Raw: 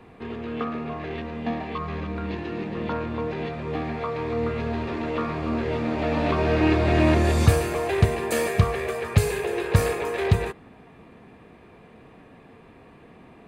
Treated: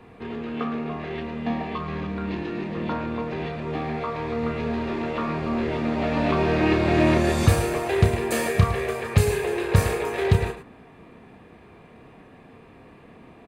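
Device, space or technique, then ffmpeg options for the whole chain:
slapback doubling: -filter_complex "[0:a]asplit=3[link_01][link_02][link_03];[link_02]adelay=31,volume=-8dB[link_04];[link_03]adelay=108,volume=-11.5dB[link_05];[link_01][link_04][link_05]amix=inputs=3:normalize=0"

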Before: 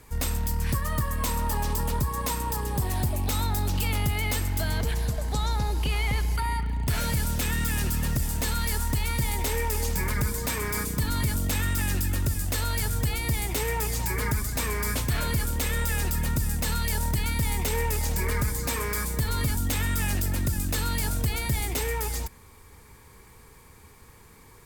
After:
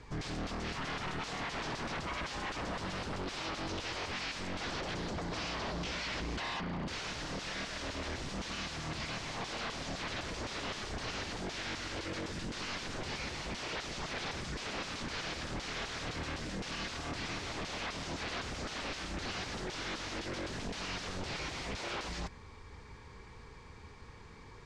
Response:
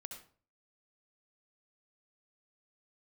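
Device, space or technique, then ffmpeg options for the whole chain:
synthesiser wavefolder: -af "aeval=exprs='0.0237*(abs(mod(val(0)/0.0237+3,4)-2)-1)':channel_layout=same,lowpass=frequency=5600:width=0.5412,lowpass=frequency=5600:width=1.3066"

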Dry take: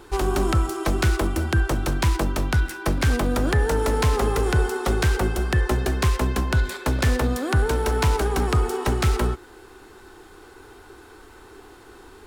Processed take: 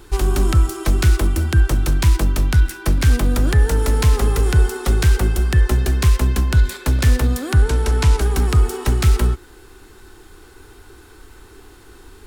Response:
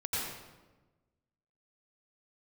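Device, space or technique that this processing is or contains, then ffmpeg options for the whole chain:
smiley-face EQ: -filter_complex "[0:a]asettb=1/sr,asplit=3[link_01][link_02][link_03];[link_01]atrim=end=7.564[link_04];[link_02]atrim=start=7.56:end=8.21,asetpts=PTS-STARTPTS,afade=type=in:duration=0.004:curve=qsin,afade=type=out:start_time=0.646:duration=0.004:curve=qsin,lowpass=10000[link_05];[link_03]atrim=start=8.206[link_06];[link_04][link_05]acrossfade=duration=0.004:curve1=hsin:curve2=qsin[link_07];[link_07][link_06]acrossfade=duration=0.004:curve1=qsin:curve2=hsin,lowshelf=frequency=87:gain=8,equalizer=frequency=710:width_type=o:width=2.1:gain=-6,highshelf=frequency=7800:gain=4.5,volume=2.5dB"

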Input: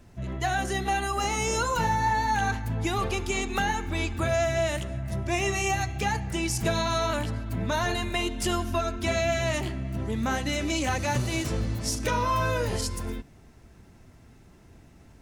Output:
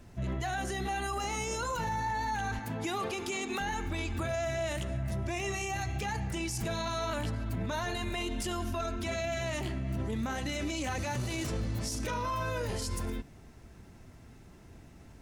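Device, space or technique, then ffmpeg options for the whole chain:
stacked limiters: -filter_complex "[0:a]asettb=1/sr,asplit=3[link_01][link_02][link_03];[link_01]atrim=end=2.594[link_04];[link_02]atrim=start=2.59:end=3.61,asetpts=PTS-STARTPTS,afade=type=in:duration=0.004:curve=qsin,afade=type=out:start_time=1.016:duration=0.004:curve=qsin,highpass=190[link_05];[link_03]atrim=start=3.606[link_06];[link_04][link_05]acrossfade=duration=0.004:curve1=hsin:curve2=qsin[link_07];[link_07][link_06]acrossfade=duration=0.004:curve1=qsin:curve2=hsin,alimiter=limit=-21dB:level=0:latency=1:release=12,alimiter=level_in=2dB:limit=-24dB:level=0:latency=1:release=56,volume=-2dB"

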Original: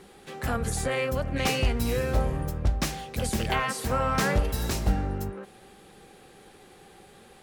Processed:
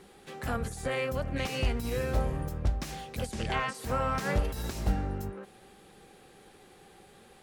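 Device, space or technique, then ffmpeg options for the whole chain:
de-esser from a sidechain: -filter_complex "[0:a]asplit=2[link_01][link_02];[link_02]highpass=6800,apad=whole_len=327416[link_03];[link_01][link_03]sidechaincompress=threshold=-42dB:ratio=8:attack=3.7:release=27,asplit=3[link_04][link_05][link_06];[link_04]afade=type=out:start_time=3.31:duration=0.02[link_07];[link_05]lowpass=frequency=9400:width=0.5412,lowpass=frequency=9400:width=1.3066,afade=type=in:start_time=3.31:duration=0.02,afade=type=out:start_time=3.73:duration=0.02[link_08];[link_06]afade=type=in:start_time=3.73:duration=0.02[link_09];[link_07][link_08][link_09]amix=inputs=3:normalize=0,volume=-3.5dB"

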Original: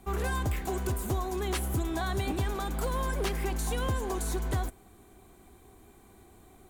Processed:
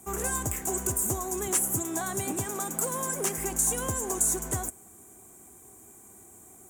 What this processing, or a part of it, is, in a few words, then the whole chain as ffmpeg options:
budget condenser microphone: -filter_complex "[0:a]asettb=1/sr,asplit=3[link_01][link_02][link_03];[link_01]atrim=end=1.474[link_04];[link_02]atrim=start=1.47:end=3.38,asetpts=PTS-STARTPTS,afade=type=in:duration=0.004:curve=qsin,afade=type=out:start_time=1.906:duration=0.004:curve=qsin,highpass=frequency=95:width=0.5412,highpass=frequency=95:width=1.3066[link_05];[link_03]atrim=start=3.376[link_06];[link_04][link_05]acrossfade=duration=0.004:curve1=hsin:curve2=qsin[link_07];[link_07][link_06]acrossfade=duration=0.004:curve1=qsin:curve2=hsin,highpass=100,highshelf=frequency=5500:width_type=q:width=3:gain=10.5"

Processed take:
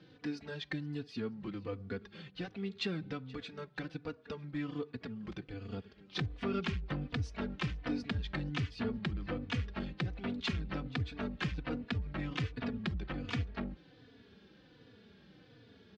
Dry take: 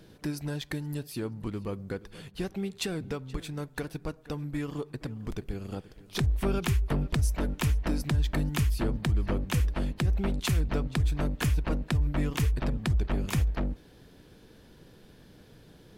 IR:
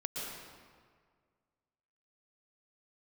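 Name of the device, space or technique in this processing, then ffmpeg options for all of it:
barber-pole flanger into a guitar amplifier: -filter_complex "[0:a]asplit=2[link_01][link_02];[link_02]adelay=3.4,afreqshift=-1.3[link_03];[link_01][link_03]amix=inputs=2:normalize=1,asoftclip=type=tanh:threshold=-22dB,highpass=110,equalizer=frequency=140:width_type=q:width=4:gain=-6,equalizer=frequency=350:width_type=q:width=4:gain=-5,equalizer=frequency=610:width_type=q:width=4:gain=-6,equalizer=frequency=940:width_type=q:width=4:gain=-6,lowpass=frequency=4500:width=0.5412,lowpass=frequency=4500:width=1.3066,volume=1dB"

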